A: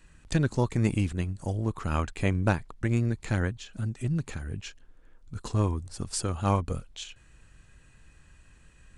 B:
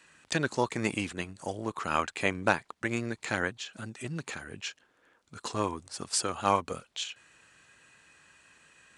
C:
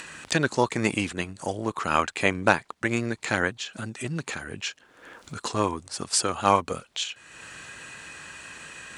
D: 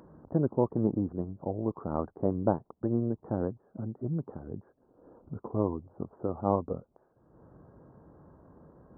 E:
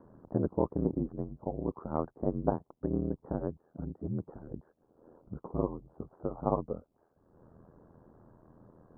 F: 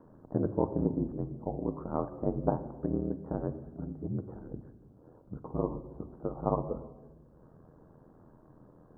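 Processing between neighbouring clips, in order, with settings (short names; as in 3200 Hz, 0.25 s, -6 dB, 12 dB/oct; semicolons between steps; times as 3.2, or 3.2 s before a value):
weighting filter A; gain +4 dB
upward compressor, threshold -36 dBFS; gain +5.5 dB
Gaussian blur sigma 12 samples
ring modulator 41 Hz
shoebox room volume 840 m³, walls mixed, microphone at 0.51 m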